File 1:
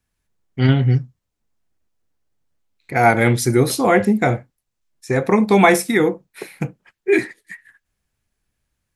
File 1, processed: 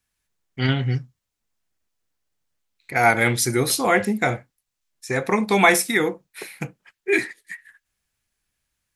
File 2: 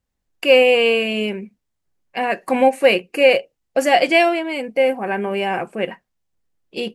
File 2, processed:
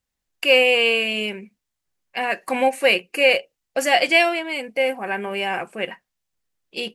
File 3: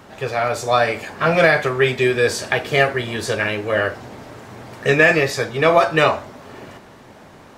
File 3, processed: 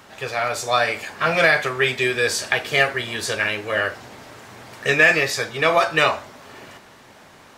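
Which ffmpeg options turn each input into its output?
-af "tiltshelf=f=970:g=-5,volume=-2.5dB"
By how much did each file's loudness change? -3.5, -2.0, -1.5 LU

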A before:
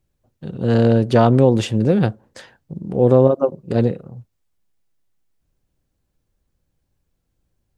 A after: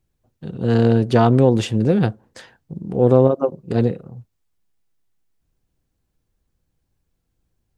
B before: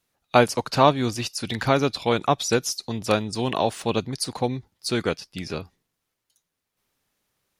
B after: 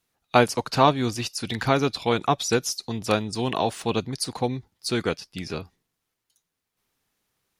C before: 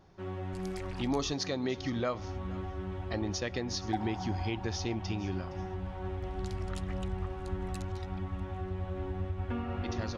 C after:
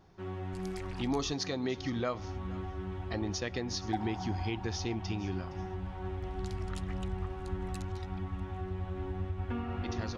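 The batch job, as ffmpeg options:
-af "bandreject=f=570:w=12,aeval=exprs='0.841*(cos(1*acos(clip(val(0)/0.841,-1,1)))-cos(1*PI/2))+0.0211*(cos(3*acos(clip(val(0)/0.841,-1,1)))-cos(3*PI/2))':c=same"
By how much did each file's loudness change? -1.0, -1.0, -1.0 LU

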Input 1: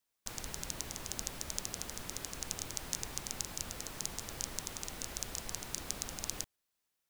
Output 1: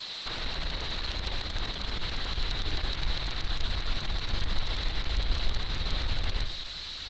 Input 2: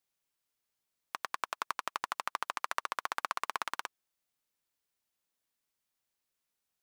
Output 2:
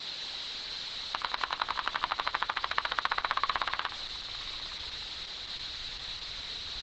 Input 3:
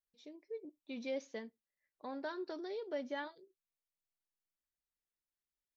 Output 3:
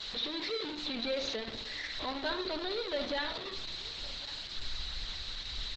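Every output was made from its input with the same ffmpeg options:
-filter_complex "[0:a]aeval=exprs='val(0)+0.5*0.0133*sgn(val(0))':c=same,lowpass=f=4k:t=q:w=9.5,equalizer=f=2.9k:w=0.47:g=4,bandreject=f=2.5k:w=21,asplit=2[a][b];[b]aecho=0:1:1102:0.0944[c];[a][c]amix=inputs=2:normalize=0,agate=range=-50dB:threshold=-52dB:ratio=16:detection=peak,asplit=2[d][e];[e]adelay=70,lowpass=f=2k:p=1,volume=-7.5dB,asplit=2[f][g];[g]adelay=70,lowpass=f=2k:p=1,volume=0.39,asplit=2[h][i];[i]adelay=70,lowpass=f=2k:p=1,volume=0.39,asplit=2[j][k];[k]adelay=70,lowpass=f=2k:p=1,volume=0.39[l];[f][h][j][l]amix=inputs=4:normalize=0[m];[d][m]amix=inputs=2:normalize=0,acrossover=split=2700[n][o];[o]acompressor=threshold=-40dB:ratio=4:attack=1:release=60[p];[n][p]amix=inputs=2:normalize=0,asubboost=boost=9:cutoff=71,volume=1.5dB" -ar 48000 -c:a libopus -b:a 10k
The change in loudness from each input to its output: +6.5, +3.5, +7.5 LU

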